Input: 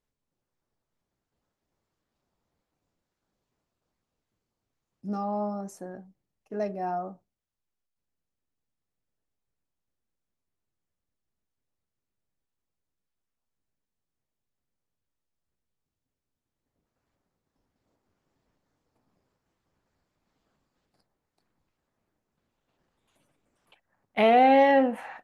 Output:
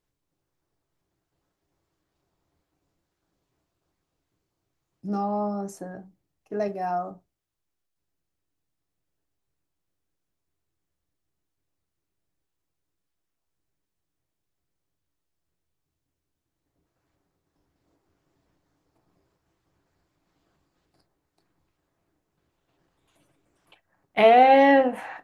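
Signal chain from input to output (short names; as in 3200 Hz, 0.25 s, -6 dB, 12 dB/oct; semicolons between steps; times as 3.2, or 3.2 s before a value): 6.68–7.11 tilt +1.5 dB/oct; on a send: reverb, pre-delay 3 ms, DRR 10.5 dB; on the sum: gain +3.5 dB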